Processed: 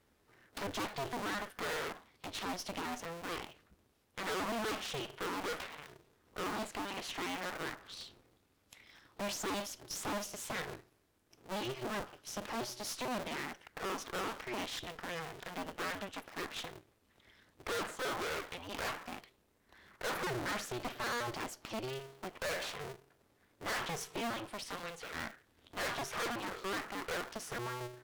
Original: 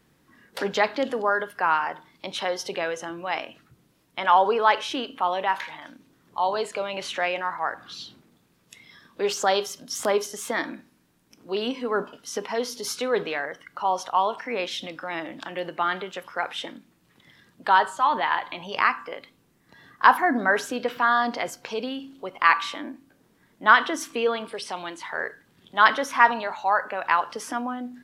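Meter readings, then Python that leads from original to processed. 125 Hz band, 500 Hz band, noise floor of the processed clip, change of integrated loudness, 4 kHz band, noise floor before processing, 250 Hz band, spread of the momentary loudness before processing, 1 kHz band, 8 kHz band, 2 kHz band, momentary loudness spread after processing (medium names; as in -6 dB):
-1.0 dB, -14.0 dB, -73 dBFS, -15.0 dB, -9.5 dB, -64 dBFS, -9.5 dB, 15 LU, -18.5 dB, -7.0 dB, -15.0 dB, 10 LU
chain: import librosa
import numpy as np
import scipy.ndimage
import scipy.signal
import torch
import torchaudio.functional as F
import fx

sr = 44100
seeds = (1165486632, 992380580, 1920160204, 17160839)

y = fx.cycle_switch(x, sr, every=2, mode='inverted')
y = fx.tube_stage(y, sr, drive_db=29.0, bias=0.65)
y = y * 10.0 ** (-5.5 / 20.0)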